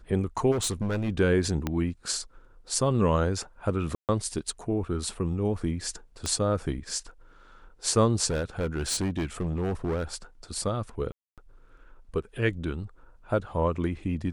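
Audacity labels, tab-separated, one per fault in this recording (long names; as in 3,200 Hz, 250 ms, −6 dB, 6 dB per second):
0.510000	1.100000	clipping −24.5 dBFS
1.670000	1.670000	click −14 dBFS
3.950000	4.090000	drop-out 138 ms
6.260000	6.260000	click −16 dBFS
8.300000	10.160000	clipping −24.5 dBFS
11.120000	11.380000	drop-out 257 ms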